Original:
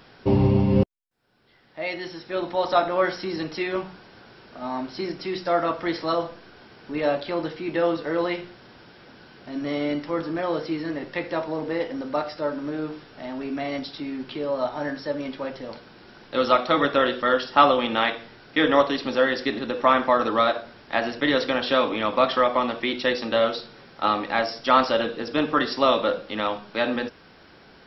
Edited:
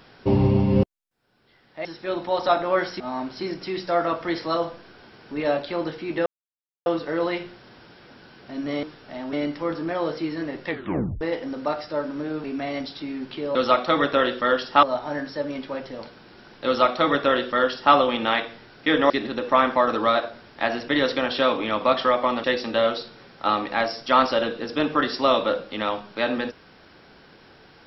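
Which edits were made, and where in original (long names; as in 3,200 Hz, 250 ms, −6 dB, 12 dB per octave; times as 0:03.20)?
0:01.85–0:02.11: remove
0:03.26–0:04.58: remove
0:07.84: splice in silence 0.60 s
0:11.16: tape stop 0.53 s
0:12.92–0:13.42: move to 0:09.81
0:16.36–0:17.64: duplicate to 0:14.53
0:18.80–0:19.42: remove
0:22.76–0:23.02: remove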